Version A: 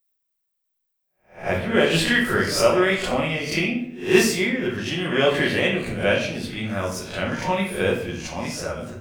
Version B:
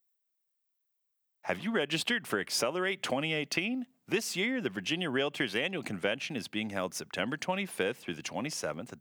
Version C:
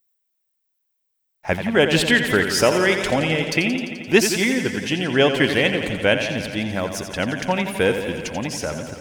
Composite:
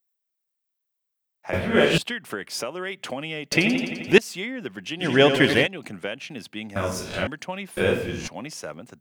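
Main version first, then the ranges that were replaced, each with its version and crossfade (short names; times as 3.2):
B
1.53–1.98 from A
3.52–4.18 from C
5.02–5.65 from C, crossfade 0.06 s
6.76–7.27 from A
7.77–8.28 from A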